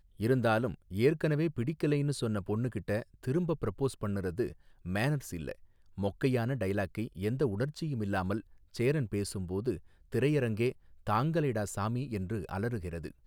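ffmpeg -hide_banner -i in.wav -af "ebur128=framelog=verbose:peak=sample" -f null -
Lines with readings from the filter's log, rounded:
Integrated loudness:
  I:         -32.8 LUFS
  Threshold: -43.0 LUFS
Loudness range:
  LRA:         2.6 LU
  Threshold: -53.4 LUFS
  LRA low:   -34.5 LUFS
  LRA high:  -31.9 LUFS
Sample peak:
  Peak:      -15.0 dBFS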